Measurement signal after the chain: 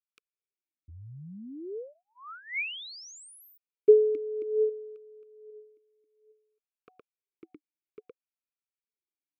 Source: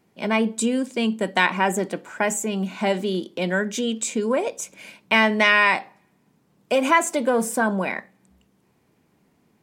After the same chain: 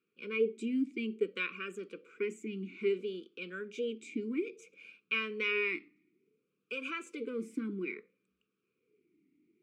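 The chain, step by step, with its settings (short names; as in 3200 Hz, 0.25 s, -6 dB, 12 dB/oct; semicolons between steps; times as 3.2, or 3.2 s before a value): elliptic band-stop 450–1300 Hz, stop band 40 dB; vowel sweep a-u 0.59 Hz; gain +2 dB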